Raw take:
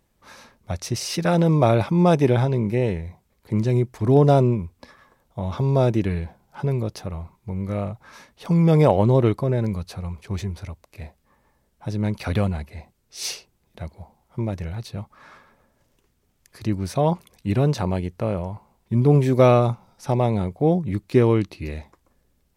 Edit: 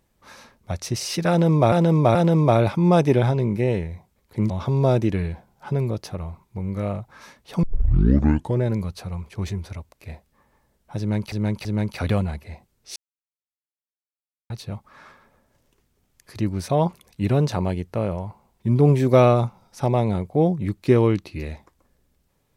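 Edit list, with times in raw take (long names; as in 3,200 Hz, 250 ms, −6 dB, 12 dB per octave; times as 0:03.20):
0:01.29–0:01.72: repeat, 3 plays
0:03.64–0:05.42: remove
0:08.55: tape start 0.99 s
0:11.91–0:12.24: repeat, 3 plays
0:13.22–0:14.76: silence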